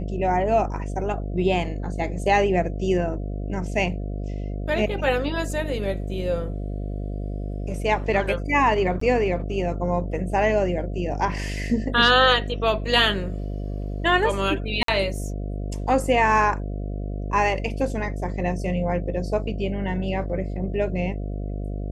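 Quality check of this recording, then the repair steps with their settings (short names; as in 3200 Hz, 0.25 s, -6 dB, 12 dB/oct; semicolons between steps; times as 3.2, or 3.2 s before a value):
buzz 50 Hz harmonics 14 -29 dBFS
9–9.01 gap 14 ms
14.83–14.88 gap 53 ms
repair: de-hum 50 Hz, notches 14; interpolate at 9, 14 ms; interpolate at 14.83, 53 ms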